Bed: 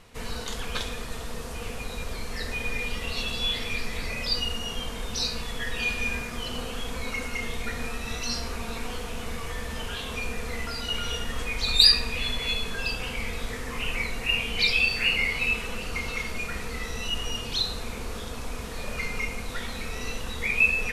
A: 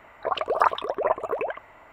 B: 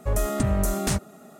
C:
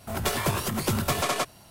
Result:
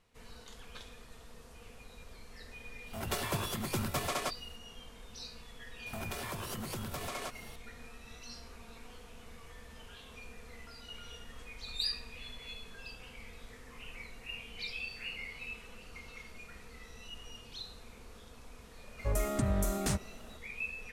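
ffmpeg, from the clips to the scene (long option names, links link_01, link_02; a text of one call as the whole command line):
ffmpeg -i bed.wav -i cue0.wav -i cue1.wav -i cue2.wav -filter_complex "[3:a]asplit=2[link_01][link_02];[0:a]volume=-18dB[link_03];[link_02]acompressor=threshold=-37dB:ratio=6:attack=3.2:release=140:knee=1:detection=peak[link_04];[link_01]atrim=end=1.7,asetpts=PTS-STARTPTS,volume=-8.5dB,afade=type=in:duration=0.004:curve=hsin,afade=type=out:start_time=1.696:duration=0.004:curve=hsin,adelay=2860[link_05];[link_04]atrim=end=1.7,asetpts=PTS-STARTPTS,volume=-0.5dB,afade=type=in:duration=0.004:curve=hsin,afade=type=out:start_time=1.696:duration=0.004:curve=hsin,adelay=5860[link_06];[2:a]atrim=end=1.39,asetpts=PTS-STARTPTS,volume=-7.5dB,afade=type=in:duration=0.004:curve=hsin,afade=type=out:start_time=1.386:duration=0.004:curve=hsin,adelay=18990[link_07];[link_03][link_05][link_06][link_07]amix=inputs=4:normalize=0" out.wav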